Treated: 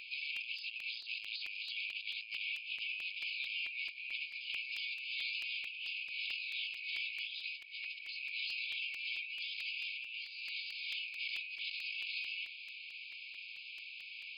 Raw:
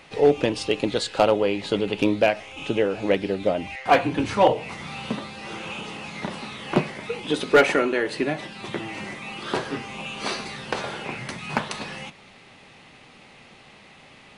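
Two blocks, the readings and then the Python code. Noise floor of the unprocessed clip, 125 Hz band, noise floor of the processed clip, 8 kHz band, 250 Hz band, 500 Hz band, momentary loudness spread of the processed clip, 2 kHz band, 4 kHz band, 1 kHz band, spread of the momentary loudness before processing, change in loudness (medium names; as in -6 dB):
-50 dBFS, under -40 dB, -50 dBFS, under -25 dB, under -40 dB, under -40 dB, 8 LU, -8.5 dB, -6.0 dB, under -40 dB, 13 LU, -14.5 dB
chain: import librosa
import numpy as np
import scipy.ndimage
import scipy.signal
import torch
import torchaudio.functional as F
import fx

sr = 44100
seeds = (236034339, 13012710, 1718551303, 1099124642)

p1 = 10.0 ** (-21.5 / 20.0) * (np.abs((x / 10.0 ** (-21.5 / 20.0) + 3.0) % 4.0 - 2.0) - 1.0)
p2 = x + F.gain(torch.from_numpy(p1), -4.5).numpy()
p3 = fx.brickwall_bandpass(p2, sr, low_hz=2200.0, high_hz=5100.0)
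p4 = fx.peak_eq(p3, sr, hz=3700.0, db=-10.0, octaves=1.0)
p5 = p4 + 10.0 ** (-6.0 / 20.0) * np.pad(p4, (int(356 * sr / 1000.0), 0))[:len(p4)]
p6 = fx.over_compress(p5, sr, threshold_db=-45.0, ratio=-1.0)
p7 = fx.buffer_crackle(p6, sr, first_s=0.36, period_s=0.22, block=128, kind='repeat')
y = F.gain(torch.from_numpy(p7), 2.0).numpy()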